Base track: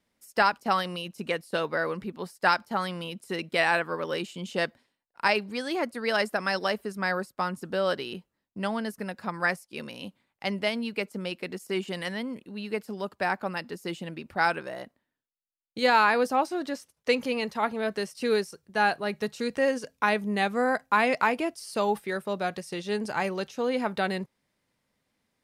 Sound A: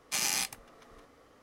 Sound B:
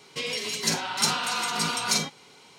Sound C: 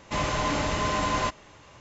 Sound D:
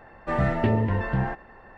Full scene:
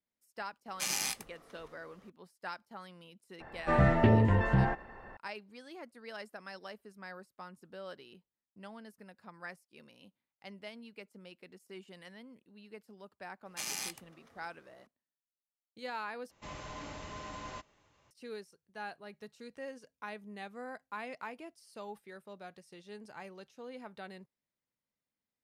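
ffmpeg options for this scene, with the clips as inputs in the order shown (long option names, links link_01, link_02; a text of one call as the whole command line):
ffmpeg -i bed.wav -i cue0.wav -i cue1.wav -i cue2.wav -i cue3.wav -filter_complex "[1:a]asplit=2[link_01][link_02];[0:a]volume=-19dB[link_03];[link_02]highpass=58[link_04];[link_03]asplit=2[link_05][link_06];[link_05]atrim=end=16.314[link_07];[3:a]atrim=end=1.8,asetpts=PTS-STARTPTS,volume=-18dB[link_08];[link_06]atrim=start=18.106[link_09];[link_01]atrim=end=1.42,asetpts=PTS-STARTPTS,volume=-3.5dB,afade=type=in:duration=0.004:curve=hsin,afade=type=out:start_time=1.416:duration=0.004:curve=hsin,adelay=680[link_10];[4:a]atrim=end=1.77,asetpts=PTS-STARTPTS,volume=-1.5dB,afade=type=in:duration=0.004:curve=hsin,afade=type=out:start_time=1.766:duration=0.004:curve=hsin,adelay=3400[link_11];[link_04]atrim=end=1.42,asetpts=PTS-STARTPTS,volume=-8dB,afade=type=in:duration=0.004:curve=hsin,afade=type=out:start_time=1.416:duration=0.004:curve=hsin,adelay=13450[link_12];[link_07][link_08]acrossfade=duration=0.004:curve1=hsin:curve2=hsin[link_13];[link_13][link_09]acrossfade=duration=0.004:curve1=hsin:curve2=hsin[link_14];[link_14][link_10][link_11][link_12]amix=inputs=4:normalize=0" out.wav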